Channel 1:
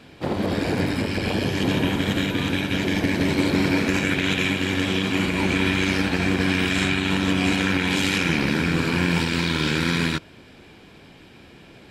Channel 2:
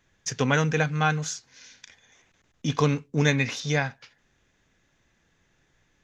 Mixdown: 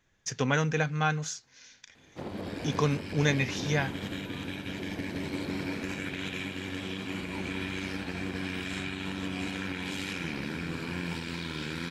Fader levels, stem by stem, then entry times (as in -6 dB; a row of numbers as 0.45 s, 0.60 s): -13.5 dB, -4.0 dB; 1.95 s, 0.00 s